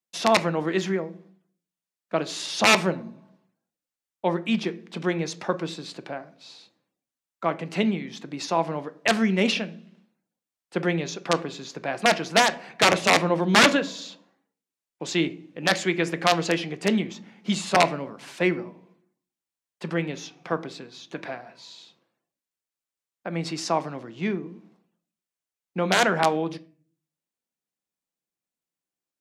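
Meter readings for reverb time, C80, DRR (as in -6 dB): 0.45 s, 22.5 dB, 11.5 dB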